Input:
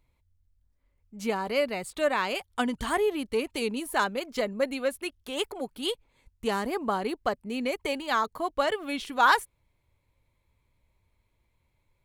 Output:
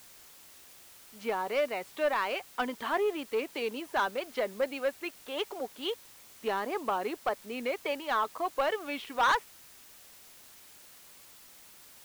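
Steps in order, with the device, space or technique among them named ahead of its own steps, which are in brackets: tape answering machine (band-pass 380–2900 Hz; saturation -20.5 dBFS, distortion -13 dB; wow and flutter; white noise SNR 20 dB)

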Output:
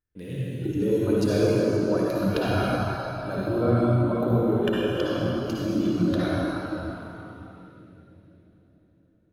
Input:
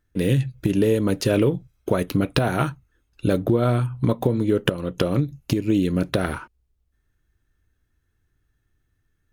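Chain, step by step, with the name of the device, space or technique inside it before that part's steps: swimming-pool hall (reverberation RT60 4.4 s, pre-delay 50 ms, DRR -7 dB; treble shelf 5.8 kHz -4.5 dB); spectral noise reduction 9 dB; trim -8.5 dB

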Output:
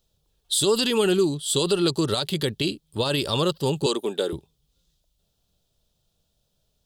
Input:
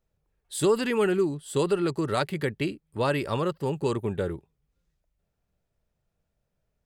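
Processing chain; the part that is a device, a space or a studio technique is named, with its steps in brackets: 3.86–4.33 s: high-pass 260 Hz 24 dB/octave; over-bright horn tweeter (resonant high shelf 2.7 kHz +8.5 dB, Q 3; peak limiter -16.5 dBFS, peak gain reduction 10 dB); trim +4.5 dB

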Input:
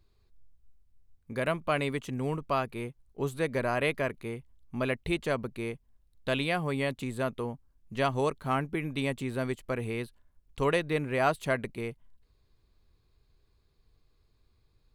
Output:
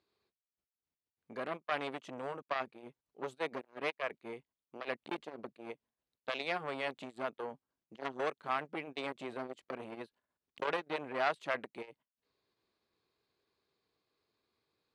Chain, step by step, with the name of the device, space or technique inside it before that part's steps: public-address speaker with an overloaded transformer (transformer saturation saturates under 1.5 kHz; band-pass 300–5500 Hz); trim -3 dB

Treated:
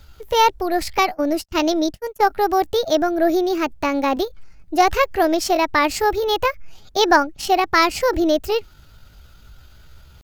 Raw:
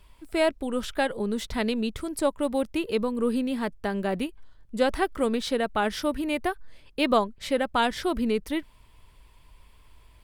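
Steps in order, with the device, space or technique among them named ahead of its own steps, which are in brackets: chipmunk voice (pitch shift +6 st); 0.98–2.22 s: gate -30 dBFS, range -44 dB; trim +8 dB

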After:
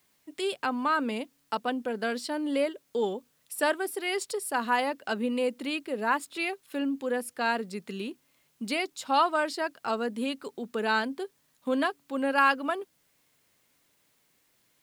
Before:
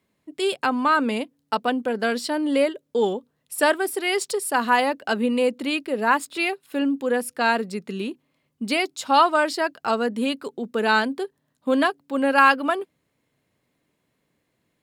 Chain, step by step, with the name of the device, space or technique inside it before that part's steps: noise-reduction cassette on a plain deck (tape noise reduction on one side only encoder only; wow and flutter 17 cents; white noise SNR 40 dB); trim -7 dB

